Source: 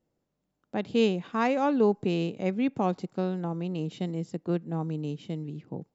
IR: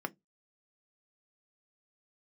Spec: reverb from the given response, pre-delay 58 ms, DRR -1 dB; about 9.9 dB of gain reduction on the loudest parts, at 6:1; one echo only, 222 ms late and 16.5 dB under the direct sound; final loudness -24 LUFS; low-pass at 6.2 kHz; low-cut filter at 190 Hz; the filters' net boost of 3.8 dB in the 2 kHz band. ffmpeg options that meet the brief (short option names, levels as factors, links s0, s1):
-filter_complex "[0:a]highpass=190,lowpass=6200,equalizer=f=2000:t=o:g=5,acompressor=threshold=0.0355:ratio=6,aecho=1:1:222:0.15,asplit=2[s0][s1];[1:a]atrim=start_sample=2205,adelay=58[s2];[s1][s2]afir=irnorm=-1:irlink=0,volume=0.794[s3];[s0][s3]amix=inputs=2:normalize=0,volume=2.24"